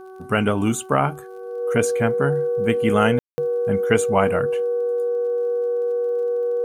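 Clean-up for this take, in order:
click removal
hum removal 377.3 Hz, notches 4
notch filter 480 Hz, Q 30
ambience match 0:03.19–0:03.38

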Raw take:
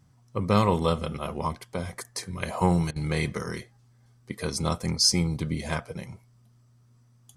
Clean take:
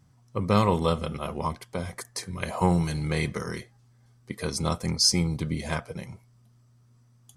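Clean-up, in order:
repair the gap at 0:02.91, 49 ms

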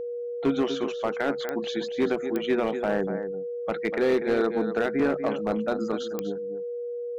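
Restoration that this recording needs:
clipped peaks rebuilt −17 dBFS
click removal
notch filter 480 Hz, Q 30
echo removal 244 ms −10 dB

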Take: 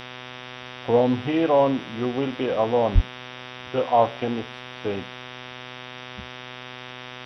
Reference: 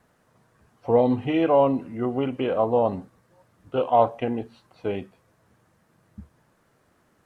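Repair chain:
hum removal 125.5 Hz, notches 30
0:02.94–0:03.06: high-pass filter 140 Hz 24 dB per octave
noise reduction from a noise print 25 dB

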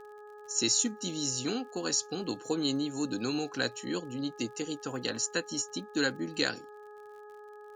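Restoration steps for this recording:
click removal
hum removal 418.9 Hz, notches 4

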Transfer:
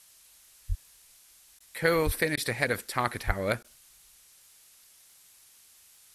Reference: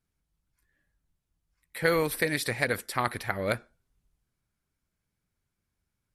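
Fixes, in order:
click removal
0:00.68–0:00.80: high-pass filter 140 Hz 24 dB per octave
0:02.05–0:02.17: high-pass filter 140 Hz 24 dB per octave
0:03.26–0:03.38: high-pass filter 140 Hz 24 dB per octave
repair the gap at 0:01.59/0:02.36/0:03.63, 12 ms
noise reduction from a noise print 25 dB

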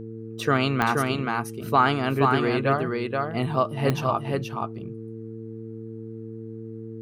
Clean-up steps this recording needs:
click removal
hum removal 112 Hz, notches 4
echo removal 477 ms −3.5 dB

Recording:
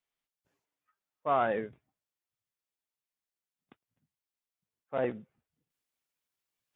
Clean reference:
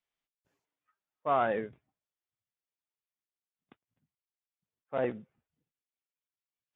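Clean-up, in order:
level correction −7 dB, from 0:05.70

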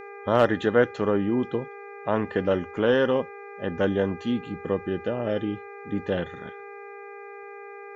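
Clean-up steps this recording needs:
clipped peaks rebuilt −7 dBFS
hum removal 402.5 Hz, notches 6
notch filter 460 Hz, Q 30

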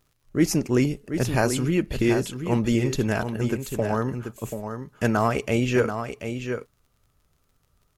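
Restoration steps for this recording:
click removal
echo removal 735 ms −8 dB

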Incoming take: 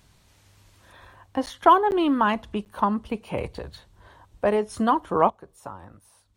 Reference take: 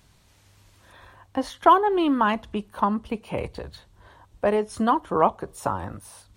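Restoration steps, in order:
repair the gap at 0:01.46/0:01.91/0:02.65, 9.8 ms
level correction +12 dB, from 0:05.30

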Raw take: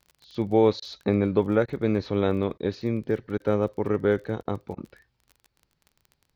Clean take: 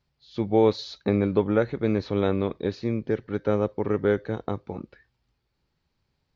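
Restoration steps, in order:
click removal
repair the gap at 0:00.80/0:01.66/0:02.58/0:03.38/0:04.43/0:04.75, 20 ms

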